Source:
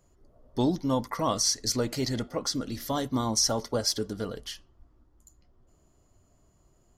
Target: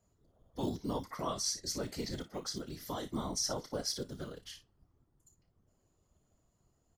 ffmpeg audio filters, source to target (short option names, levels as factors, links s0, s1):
-filter_complex "[0:a]afftfilt=real='hypot(re,im)*cos(2*PI*random(0))':imag='hypot(re,im)*sin(2*PI*random(1))':win_size=512:overlap=0.75,acrossover=split=300|1400[s0][s1][s2];[s0]acrusher=samples=9:mix=1:aa=0.000001:lfo=1:lforange=9:lforate=0.52[s3];[s2]aecho=1:1:30|57:0.355|0.282[s4];[s3][s1][s4]amix=inputs=3:normalize=0,volume=0.668"